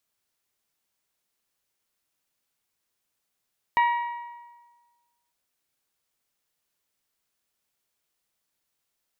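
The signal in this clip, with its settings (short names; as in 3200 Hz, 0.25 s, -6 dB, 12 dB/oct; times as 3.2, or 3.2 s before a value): metal hit bell, lowest mode 952 Hz, decay 1.40 s, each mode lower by 7.5 dB, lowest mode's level -16.5 dB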